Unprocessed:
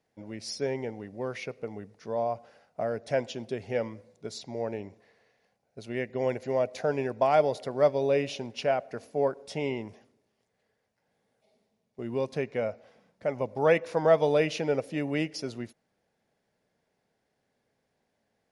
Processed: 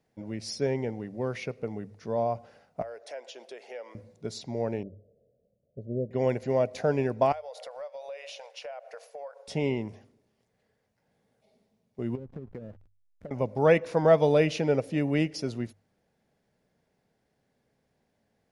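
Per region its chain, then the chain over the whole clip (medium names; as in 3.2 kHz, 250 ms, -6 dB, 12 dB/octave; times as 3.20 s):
2.82–3.95 s: high-pass 480 Hz 24 dB/octave + compression 2.5:1, threshold -43 dBFS
4.83–6.11 s: elliptic low-pass 600 Hz + comb 1.7 ms, depth 33%
7.32–9.48 s: brick-wall FIR high-pass 450 Hz + compression, threshold -39 dBFS
12.15–13.31 s: low-pass that closes with the level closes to 310 Hz, closed at -25.5 dBFS + hysteresis with a dead band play -42.5 dBFS + compression, threshold -40 dBFS
whole clip: bass shelf 250 Hz +8.5 dB; hum notches 50/100 Hz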